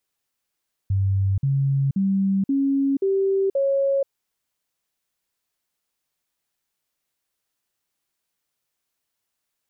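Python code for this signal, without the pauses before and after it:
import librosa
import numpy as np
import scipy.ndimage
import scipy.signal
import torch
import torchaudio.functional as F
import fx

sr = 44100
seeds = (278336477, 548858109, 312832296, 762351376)

y = fx.stepped_sweep(sr, from_hz=97.2, direction='up', per_octave=2, tones=6, dwell_s=0.48, gap_s=0.05, level_db=-17.5)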